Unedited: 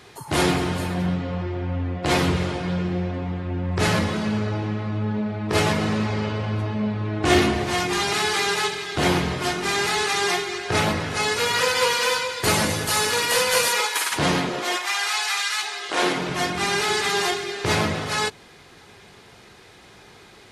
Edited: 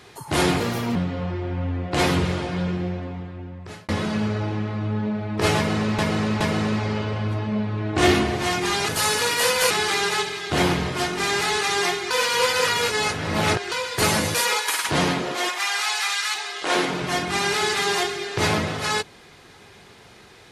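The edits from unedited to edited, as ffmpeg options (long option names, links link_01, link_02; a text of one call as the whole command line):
ffmpeg -i in.wav -filter_complex "[0:a]asplit=11[link_01][link_02][link_03][link_04][link_05][link_06][link_07][link_08][link_09][link_10][link_11];[link_01]atrim=end=0.604[link_12];[link_02]atrim=start=0.6:end=1.07,asetpts=PTS-STARTPTS,asetrate=58212,aresample=44100,atrim=end_sample=15702,asetpts=PTS-STARTPTS[link_13];[link_03]atrim=start=1.066:end=4,asetpts=PTS-STARTPTS,afade=type=out:start_time=1.694:duration=1.24[link_14];[link_04]atrim=start=4:end=6.102,asetpts=PTS-STARTPTS,afade=type=in:duration=0.004:curve=hsin[link_15];[link_05]atrim=start=5.678:end=6.102[link_16];[link_06]atrim=start=5.678:end=8.162[link_17];[link_07]atrim=start=12.798:end=13.622[link_18];[link_08]atrim=start=8.158:end=10.562[link_19];[link_09]atrim=start=10.558:end=12.172,asetpts=PTS-STARTPTS,areverse[link_20];[link_10]atrim=start=12.168:end=12.802[link_21];[link_11]atrim=start=13.618[link_22];[link_12][link_13]acrossfade=duration=0.004:curve1=hsin:curve2=hsin[link_23];[link_14][link_15]concat=n=2:v=0:a=1[link_24];[link_23][link_24]acrossfade=duration=0.004:curve1=hsin:curve2=hsin[link_25];[link_25][link_16]acrossfade=duration=0.004:curve1=hsin:curve2=hsin[link_26];[link_26][link_17]acrossfade=duration=0.004:curve1=hsin:curve2=hsin[link_27];[link_27][link_18]acrossfade=duration=0.004:curve1=hsin:curve2=hsin[link_28];[link_28][link_19]acrossfade=duration=0.004:curve1=hsin:curve2=hsin[link_29];[link_29][link_20]acrossfade=duration=0.004:curve1=hsin:curve2=hsin[link_30];[link_30][link_21]acrossfade=duration=0.004:curve1=hsin:curve2=hsin[link_31];[link_31][link_22]acrossfade=duration=0.004:curve1=hsin:curve2=hsin" out.wav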